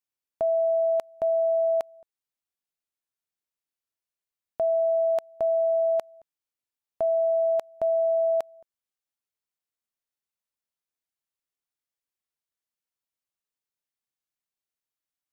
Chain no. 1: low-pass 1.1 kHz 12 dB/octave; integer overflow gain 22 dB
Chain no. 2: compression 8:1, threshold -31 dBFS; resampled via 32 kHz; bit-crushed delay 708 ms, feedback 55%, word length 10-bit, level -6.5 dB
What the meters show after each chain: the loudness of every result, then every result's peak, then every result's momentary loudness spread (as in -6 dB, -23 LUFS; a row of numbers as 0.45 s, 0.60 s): -24.0 LUFS, -34.0 LUFS; -22.0 dBFS, -19.5 dBFS; 6 LU, 18 LU